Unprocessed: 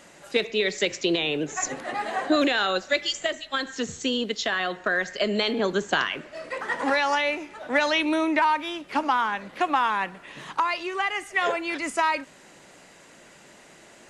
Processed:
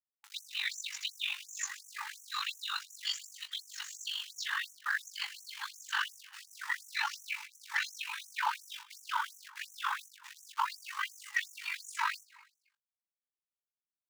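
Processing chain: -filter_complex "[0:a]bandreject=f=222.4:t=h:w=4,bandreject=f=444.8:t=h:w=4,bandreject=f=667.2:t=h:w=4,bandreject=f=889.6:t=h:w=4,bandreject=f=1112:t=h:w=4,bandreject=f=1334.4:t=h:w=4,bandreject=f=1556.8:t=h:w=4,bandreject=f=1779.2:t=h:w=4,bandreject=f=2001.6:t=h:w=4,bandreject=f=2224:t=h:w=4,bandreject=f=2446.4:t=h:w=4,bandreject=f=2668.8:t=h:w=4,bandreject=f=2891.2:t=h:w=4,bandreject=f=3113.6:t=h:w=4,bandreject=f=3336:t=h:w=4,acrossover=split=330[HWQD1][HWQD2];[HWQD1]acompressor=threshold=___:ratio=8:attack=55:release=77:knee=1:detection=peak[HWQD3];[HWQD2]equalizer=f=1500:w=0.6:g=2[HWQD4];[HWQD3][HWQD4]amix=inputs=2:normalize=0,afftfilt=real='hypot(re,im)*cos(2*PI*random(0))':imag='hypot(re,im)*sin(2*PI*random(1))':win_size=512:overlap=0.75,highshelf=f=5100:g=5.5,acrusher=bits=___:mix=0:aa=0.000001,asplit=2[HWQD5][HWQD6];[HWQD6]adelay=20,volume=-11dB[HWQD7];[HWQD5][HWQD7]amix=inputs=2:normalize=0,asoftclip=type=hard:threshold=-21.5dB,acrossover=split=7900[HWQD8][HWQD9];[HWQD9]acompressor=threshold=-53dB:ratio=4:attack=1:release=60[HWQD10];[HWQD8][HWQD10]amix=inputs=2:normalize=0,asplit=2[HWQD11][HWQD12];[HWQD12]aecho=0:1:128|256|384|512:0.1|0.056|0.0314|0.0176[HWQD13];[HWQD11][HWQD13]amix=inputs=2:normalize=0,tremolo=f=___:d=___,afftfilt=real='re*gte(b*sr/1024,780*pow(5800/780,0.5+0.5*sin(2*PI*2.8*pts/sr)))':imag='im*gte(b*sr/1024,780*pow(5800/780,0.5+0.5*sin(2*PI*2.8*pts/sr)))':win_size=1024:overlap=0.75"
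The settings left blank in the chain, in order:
-47dB, 6, 48, 0.667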